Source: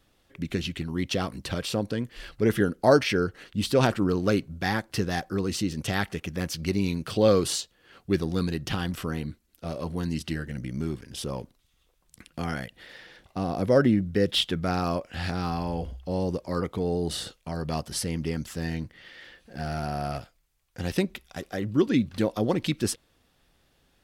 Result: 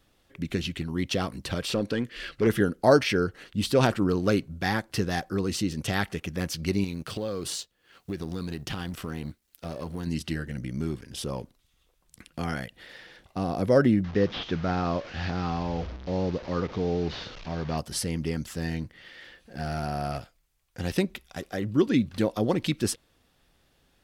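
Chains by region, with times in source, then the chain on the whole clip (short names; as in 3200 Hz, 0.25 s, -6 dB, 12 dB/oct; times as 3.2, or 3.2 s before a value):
1.69–2.47 bell 850 Hz -14 dB 0.95 oct + overdrive pedal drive 18 dB, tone 1900 Hz, clips at -13.5 dBFS
6.84–10.07 G.711 law mismatch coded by A + compressor, threshold -28 dBFS + mismatched tape noise reduction encoder only
14.04–17.78 delta modulation 32 kbps, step -35.5 dBFS + air absorption 92 m
whole clip: dry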